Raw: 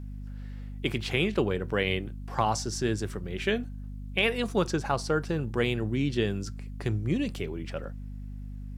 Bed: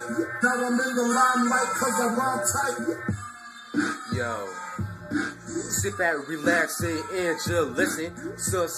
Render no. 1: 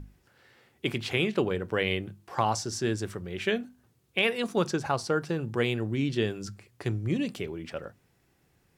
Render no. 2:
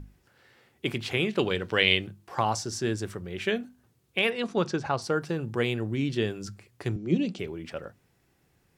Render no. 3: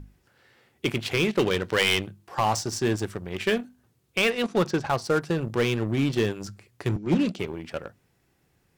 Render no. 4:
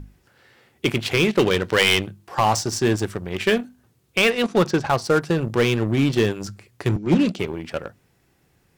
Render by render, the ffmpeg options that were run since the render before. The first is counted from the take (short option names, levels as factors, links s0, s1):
-af "bandreject=f=50:t=h:w=6,bandreject=f=100:t=h:w=6,bandreject=f=150:t=h:w=6,bandreject=f=200:t=h:w=6,bandreject=f=250:t=h:w=6"
-filter_complex "[0:a]asettb=1/sr,asplit=3[s0][s1][s2];[s0]atrim=end=1.394[s3];[s1]atrim=start=1.39:end=2.07,asetpts=PTS-STARTPTS,afade=t=in:d=0.004:c=qsin,afade=t=out:st=0.676:d=0.004:c=qsin,equalizer=f=3800:t=o:w=1.9:g=12.5[s4];[s2]atrim=start=2.066[s5];[s3][s4]acrossfade=d=0.004:c1=hsin:c2=qsin[s6];[s6][s5]acrossfade=d=0.004:c1=qsin:c2=hsin,asettb=1/sr,asplit=3[s7][s8][s9];[s7]atrim=end=4.304[s10];[s8]atrim=start=4.3:end=5.02,asetpts=PTS-STARTPTS,afade=t=in:d=0.004:c=qsin,afade=t=out:st=0.716:d=0.004:c=qsin,lowpass=5600[s11];[s9]atrim=start=5.016[s12];[s10][s11]acrossfade=d=0.004:c1=hsin:c2=qsin[s13];[s13][s12]acrossfade=d=0.004:c1=qsin:c2=hsin,asettb=1/sr,asplit=3[s14][s15][s16];[s14]atrim=end=6.964[s17];[s15]atrim=start=6.96:end=7.39,asetpts=PTS-STARTPTS,afade=t=in:d=0.004:c=qsin,afade=t=out:st=0.426:d=0.004:c=qsin,highpass=f=160:w=0.5412,highpass=f=160:w=1.3066,equalizer=f=180:t=q:w=4:g=9,equalizer=f=360:t=q:w=4:g=6,equalizer=f=1100:t=q:w=4:g=-7,equalizer=f=1800:t=q:w=4:g=-8,lowpass=f=6700:w=0.5412,lowpass=f=6700:w=1.3066[s18];[s16]atrim=start=7.386[s19];[s17][s18]acrossfade=d=0.004:c1=hsin:c2=qsin[s20];[s20][s19]acrossfade=d=0.004:c1=qsin:c2=hsin"
-filter_complex "[0:a]asplit=2[s0][s1];[s1]acrusher=bits=4:mix=0:aa=0.5,volume=0.596[s2];[s0][s2]amix=inputs=2:normalize=0,asoftclip=type=hard:threshold=0.168"
-af "volume=1.78"